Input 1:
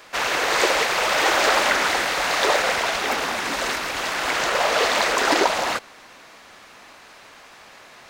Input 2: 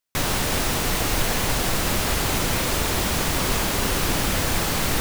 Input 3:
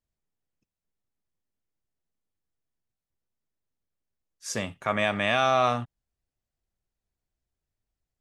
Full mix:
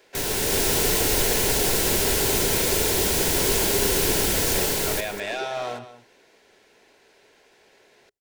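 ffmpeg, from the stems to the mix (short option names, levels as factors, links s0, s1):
-filter_complex "[0:a]equalizer=f=1100:w=1.5:g=-4.5,acompressor=threshold=0.0398:ratio=6,volume=0.266[s0];[1:a]highshelf=f=3800:g=9.5,dynaudnorm=f=180:g=5:m=3.76,volume=0.355,asplit=2[s1][s2];[s2]volume=0.224[s3];[2:a]lowshelf=f=360:g=-11,asoftclip=type=tanh:threshold=0.075,volume=0.841,asplit=2[s4][s5];[s5]volume=0.211[s6];[s3][s6]amix=inputs=2:normalize=0,aecho=0:1:197:1[s7];[s0][s1][s4][s7]amix=inputs=4:normalize=0,asuperstop=centerf=1200:order=4:qfactor=6.3,equalizer=f=410:w=2.9:g=13"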